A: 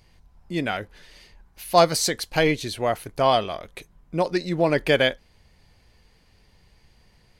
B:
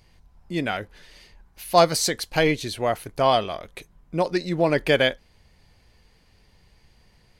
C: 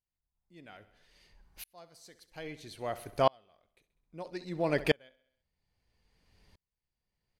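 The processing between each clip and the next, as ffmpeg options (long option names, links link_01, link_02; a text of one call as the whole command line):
ffmpeg -i in.wav -af anull out.wav
ffmpeg -i in.wav -af "aecho=1:1:66|132|198|264|330:0.141|0.0749|0.0397|0.021|0.0111,aeval=exprs='val(0)*pow(10,-37*if(lt(mod(-0.61*n/s,1),2*abs(-0.61)/1000),1-mod(-0.61*n/s,1)/(2*abs(-0.61)/1000),(mod(-0.61*n/s,1)-2*abs(-0.61)/1000)/(1-2*abs(-0.61)/1000))/20)':channel_layout=same,volume=-4dB" out.wav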